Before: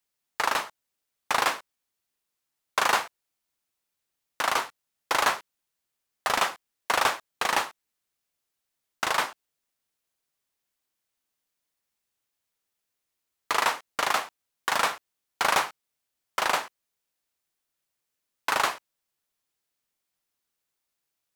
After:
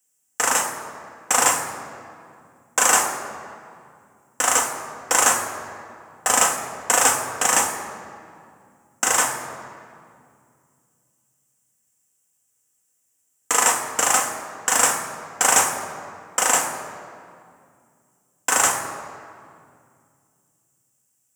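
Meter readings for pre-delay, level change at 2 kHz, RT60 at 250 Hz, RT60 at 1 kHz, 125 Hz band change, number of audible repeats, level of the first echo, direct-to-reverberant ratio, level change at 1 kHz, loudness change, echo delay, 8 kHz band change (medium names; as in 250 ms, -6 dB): 3 ms, +4.5 dB, 3.3 s, 2.2 s, +8.5 dB, no echo, no echo, 1.5 dB, +4.5 dB, +7.5 dB, no echo, +18.5 dB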